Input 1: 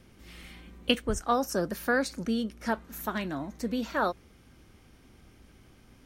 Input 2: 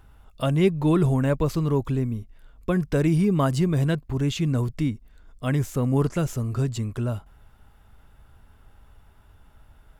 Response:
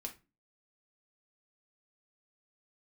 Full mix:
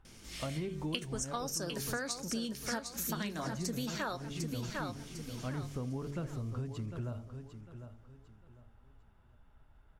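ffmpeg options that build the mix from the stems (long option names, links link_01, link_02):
-filter_complex "[0:a]equalizer=frequency=6700:width_type=o:width=1.9:gain=14.5,dynaudnorm=framelen=160:gausssize=9:maxgain=3.5dB,adelay=50,volume=-2.5dB,asplit=3[link_01][link_02][link_03];[link_02]volume=-10dB[link_04];[link_03]volume=-8.5dB[link_05];[1:a]lowpass=frequency=2700:poles=1,bandreject=frequency=47.38:width_type=h:width=4,bandreject=frequency=94.76:width_type=h:width=4,bandreject=frequency=142.14:width_type=h:width=4,bandreject=frequency=189.52:width_type=h:width=4,bandreject=frequency=236.9:width_type=h:width=4,bandreject=frequency=284.28:width_type=h:width=4,bandreject=frequency=331.66:width_type=h:width=4,bandreject=frequency=379.04:width_type=h:width=4,bandreject=frequency=426.42:width_type=h:width=4,bandreject=frequency=473.8:width_type=h:width=4,bandreject=frequency=521.18:width_type=h:width=4,bandreject=frequency=568.56:width_type=h:width=4,bandreject=frequency=615.94:width_type=h:width=4,bandreject=frequency=663.32:width_type=h:width=4,bandreject=frequency=710.7:width_type=h:width=4,volume=-9.5dB,asplit=3[link_06][link_07][link_08];[link_06]atrim=end=1.98,asetpts=PTS-STARTPTS,afade=type=out:start_time=1.976:duration=0.004:curve=hsin[link_09];[link_07]atrim=start=1.98:end=3.09,asetpts=PTS-STARTPTS,volume=0[link_10];[link_08]atrim=start=3.09,asetpts=PTS-STARTPTS,afade=type=in:duration=0.004:curve=hsin[link_11];[link_09][link_10][link_11]concat=n=3:v=0:a=1,asplit=2[link_12][link_13];[link_13]volume=-12.5dB[link_14];[2:a]atrim=start_sample=2205[link_15];[link_04][link_15]afir=irnorm=-1:irlink=0[link_16];[link_05][link_14]amix=inputs=2:normalize=0,aecho=0:1:751|1502|2253|3004:1|0.28|0.0784|0.022[link_17];[link_01][link_12][link_16][link_17]amix=inputs=4:normalize=0,acompressor=threshold=-34dB:ratio=8"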